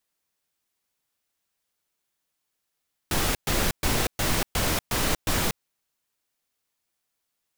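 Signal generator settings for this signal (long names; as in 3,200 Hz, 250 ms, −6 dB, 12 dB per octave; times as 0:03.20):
noise bursts pink, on 0.24 s, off 0.12 s, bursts 7, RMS −24 dBFS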